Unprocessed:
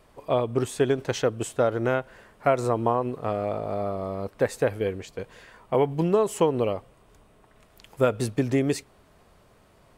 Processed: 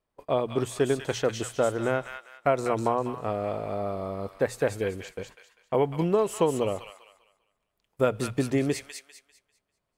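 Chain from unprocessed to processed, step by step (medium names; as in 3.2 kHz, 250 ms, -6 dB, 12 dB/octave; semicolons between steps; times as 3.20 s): hum notches 60/120 Hz; gate -43 dBFS, range -23 dB; feedback echo behind a high-pass 198 ms, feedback 32%, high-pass 1.6 kHz, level -3 dB; trim -2 dB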